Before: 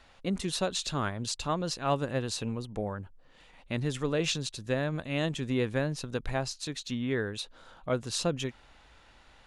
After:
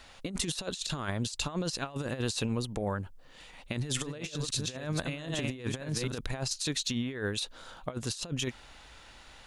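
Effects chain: 3.72–6.18 reverse delay 0.262 s, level -6.5 dB; high shelf 3600 Hz +8.5 dB; negative-ratio compressor -33 dBFS, ratio -0.5

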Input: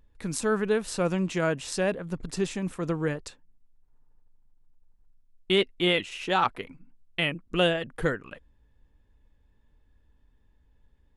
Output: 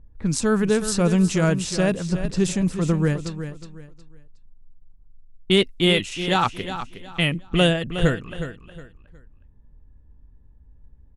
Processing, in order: low-pass opened by the level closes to 1100 Hz, open at -24.5 dBFS; tone controls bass +10 dB, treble +10 dB; feedback echo 0.364 s, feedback 28%, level -10.5 dB; gain +2.5 dB

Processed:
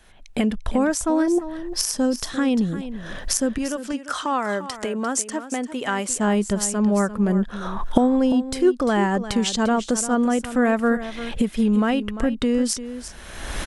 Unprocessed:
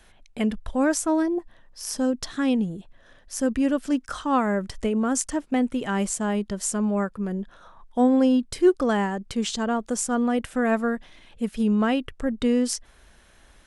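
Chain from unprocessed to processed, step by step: recorder AGC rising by 31 dB/s; 3.58–6.1 HPF 560 Hz 6 dB/oct; echo 0.347 s -12.5 dB

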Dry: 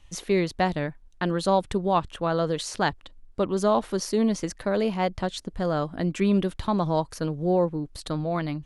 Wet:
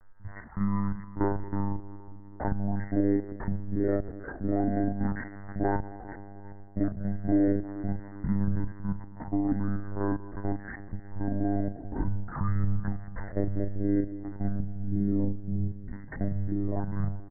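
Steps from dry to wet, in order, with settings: comb 1.6 ms, depth 53%; in parallel at -2 dB: compressor, threshold -28 dBFS, peak gain reduction 12 dB; on the sum: small resonant body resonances 280/1500 Hz, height 15 dB, ringing for 65 ms; added noise blue -58 dBFS; on a send: thinning echo 0.182 s, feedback 46%, high-pass 620 Hz, level -20.5 dB; on the sum: shoebox room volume 3200 m³, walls mixed, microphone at 0.58 m; monotone LPC vocoder at 8 kHz 200 Hz; speed mistake 15 ips tape played at 7.5 ips; gain -8 dB

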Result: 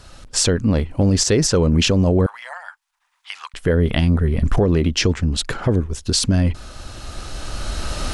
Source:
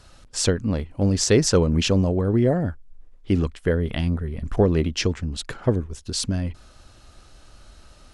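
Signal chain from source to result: recorder AGC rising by 8.8 dB/s; 2.26–3.54 elliptic high-pass 900 Hz, stop band 60 dB; limiter -14.5 dBFS, peak gain reduction 10 dB; gain +6.5 dB

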